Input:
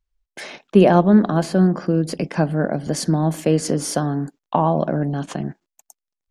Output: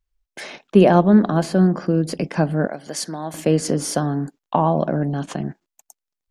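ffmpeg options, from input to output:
ffmpeg -i in.wav -filter_complex "[0:a]asettb=1/sr,asplit=3[link_01][link_02][link_03];[link_01]atrim=end=2.674[link_04];[link_02]atrim=start=2.67:end=3.34,asetpts=PTS-STARTPTS,afade=type=in:duration=0.004:curve=qsin,afade=type=out:start_time=0.666:duration=0.004:curve=qsin,highpass=frequency=1000:poles=1[link_05];[link_03]atrim=start=3.336[link_06];[link_04][link_05]acrossfade=duration=0.004:curve1=hsin:curve2=qsin[link_07];[link_07][link_06]acrossfade=duration=0.004:curve1=qsin:curve2=hsin" out.wav

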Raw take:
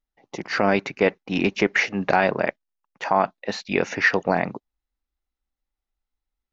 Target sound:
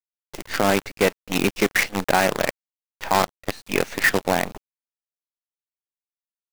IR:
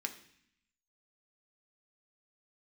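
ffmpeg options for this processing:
-filter_complex "[0:a]acrusher=bits=4:dc=4:mix=0:aa=0.000001,asettb=1/sr,asplit=3[link_01][link_02][link_03];[link_01]atrim=end=3.134[link_04];[link_02]atrim=start=3.13:end=3.64,asetpts=PTS-STARTPTS,afade=type=in:duration=0.004:curve=qsin,afade=type=out:start_time=0.506:duration=0.004:curve=qsin,aeval=exprs='0.562*(cos(1*acos(clip(val(0)/0.562,-1,1)))-cos(1*PI/2))+0.126*(cos(7*acos(clip(val(0)/0.562,-1,1)))-cos(7*PI/2))':channel_layout=same[link_05];[link_03]atrim=start=3.636[link_06];[link_04][link_05]acrossfade=duration=0.004:curve1=hsin:curve2=qsin[link_07];[link_07][link_06]acrossfade=duration=0.004:curve1=qsin:curve2=hsin"

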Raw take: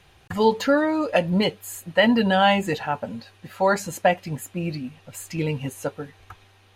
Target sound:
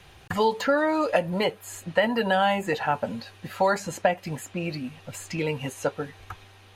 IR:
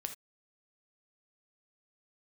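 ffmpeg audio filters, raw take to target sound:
-filter_complex "[0:a]acrossover=split=450|2100|7700[link_01][link_02][link_03][link_04];[link_01]acompressor=threshold=-36dB:ratio=4[link_05];[link_02]acompressor=threshold=-25dB:ratio=4[link_06];[link_03]acompressor=threshold=-42dB:ratio=4[link_07];[link_04]acompressor=threshold=-55dB:ratio=4[link_08];[link_05][link_06][link_07][link_08]amix=inputs=4:normalize=0,volume=4dB"

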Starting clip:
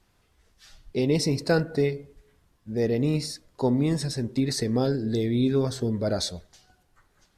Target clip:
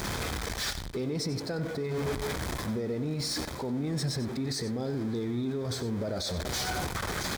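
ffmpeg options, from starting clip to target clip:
ffmpeg -i in.wav -af "aeval=exprs='val(0)+0.5*0.0282*sgn(val(0))':channel_layout=same,highpass=49,highshelf=frequency=8100:gain=-8.5,bandreject=frequency=2800:width=6.9,areverse,acompressor=threshold=-32dB:ratio=16,areverse,alimiter=level_in=10dB:limit=-24dB:level=0:latency=1:release=77,volume=-10dB,aecho=1:1:93:0.224,volume=9dB" out.wav

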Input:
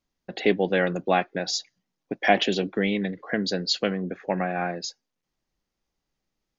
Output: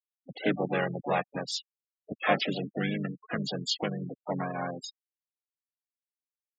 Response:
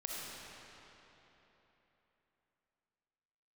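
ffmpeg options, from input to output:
-filter_complex "[0:a]asplit=4[link_01][link_02][link_03][link_04];[link_02]asetrate=33038,aresample=44100,atempo=1.33484,volume=-3dB[link_05];[link_03]asetrate=52444,aresample=44100,atempo=0.840896,volume=-18dB[link_06];[link_04]asetrate=66075,aresample=44100,atempo=0.66742,volume=-8dB[link_07];[link_01][link_05][link_06][link_07]amix=inputs=4:normalize=0,afftfilt=real='re*gte(hypot(re,im),0.0631)':imag='im*gte(hypot(re,im),0.0631)':win_size=1024:overlap=0.75,equalizer=frequency=370:width_type=o:width=0.5:gain=-5.5,volume=-7dB"

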